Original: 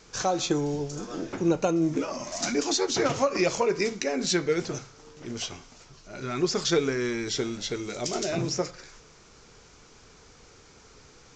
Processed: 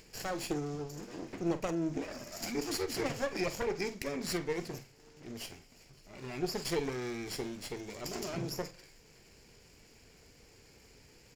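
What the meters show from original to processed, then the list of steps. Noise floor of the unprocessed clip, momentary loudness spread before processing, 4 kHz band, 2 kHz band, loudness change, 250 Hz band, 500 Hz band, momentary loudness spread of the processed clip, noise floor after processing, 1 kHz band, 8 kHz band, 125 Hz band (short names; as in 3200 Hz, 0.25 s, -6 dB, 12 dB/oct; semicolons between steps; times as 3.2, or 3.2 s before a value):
-54 dBFS, 11 LU, -10.5 dB, -8.0 dB, -9.5 dB, -9.0 dB, -9.5 dB, 12 LU, -60 dBFS, -10.5 dB, -11.5 dB, -8.0 dB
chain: minimum comb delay 0.4 ms; upward compressor, threshold -44 dBFS; doubler 47 ms -14 dB; gain -8.5 dB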